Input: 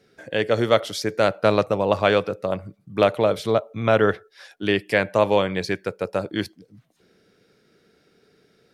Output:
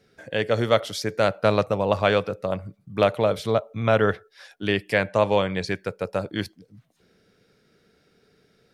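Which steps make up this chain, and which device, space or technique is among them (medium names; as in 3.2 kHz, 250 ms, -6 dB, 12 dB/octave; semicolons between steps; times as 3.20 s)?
low shelf boost with a cut just above (bass shelf 83 Hz +7.5 dB; peaking EQ 340 Hz -3.5 dB 0.55 oct); 5.07–5.67 s: steep low-pass 10 kHz 36 dB/octave; trim -1.5 dB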